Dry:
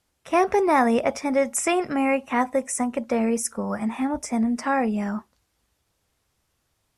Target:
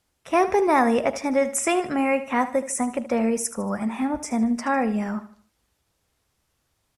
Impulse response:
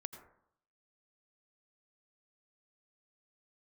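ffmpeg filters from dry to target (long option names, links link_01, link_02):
-af "aecho=1:1:76|152|228|304:0.2|0.0758|0.0288|0.0109"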